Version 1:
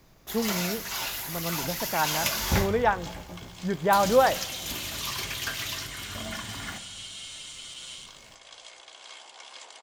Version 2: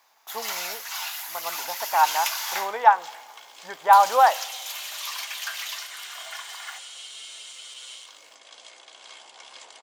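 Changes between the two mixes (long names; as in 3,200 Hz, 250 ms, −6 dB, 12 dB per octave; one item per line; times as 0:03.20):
speech: add high-pass with resonance 870 Hz, resonance Q 3.4
first sound: add Butterworth high-pass 690 Hz 72 dB per octave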